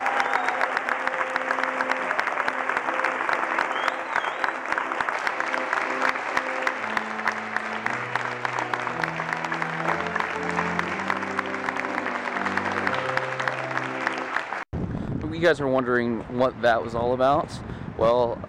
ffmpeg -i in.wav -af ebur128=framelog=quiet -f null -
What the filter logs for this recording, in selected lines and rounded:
Integrated loudness:
  I:         -25.4 LUFS
  Threshold: -35.4 LUFS
Loudness range:
  LRA:         2.8 LU
  Threshold: -45.6 LUFS
  LRA low:   -26.8 LUFS
  LRA high:  -24.0 LUFS